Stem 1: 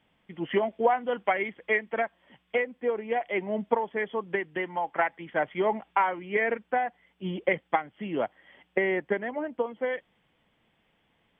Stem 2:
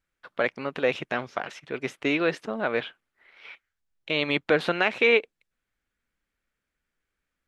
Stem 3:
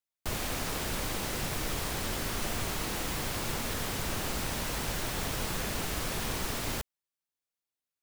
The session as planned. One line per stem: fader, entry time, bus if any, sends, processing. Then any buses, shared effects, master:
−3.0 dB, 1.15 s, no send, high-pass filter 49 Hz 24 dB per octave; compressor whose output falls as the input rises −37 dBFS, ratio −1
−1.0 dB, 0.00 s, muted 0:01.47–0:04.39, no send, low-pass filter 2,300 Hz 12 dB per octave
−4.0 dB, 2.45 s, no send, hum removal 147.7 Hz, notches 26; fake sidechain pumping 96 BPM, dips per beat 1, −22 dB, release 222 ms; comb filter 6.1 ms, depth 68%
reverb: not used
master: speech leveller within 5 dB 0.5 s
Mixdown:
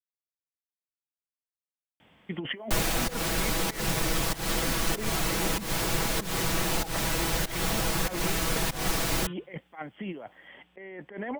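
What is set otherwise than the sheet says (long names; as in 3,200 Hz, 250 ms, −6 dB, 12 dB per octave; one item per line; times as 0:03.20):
stem 1: entry 1.15 s → 2.00 s
stem 2: muted
stem 3 −4.0 dB → +5.0 dB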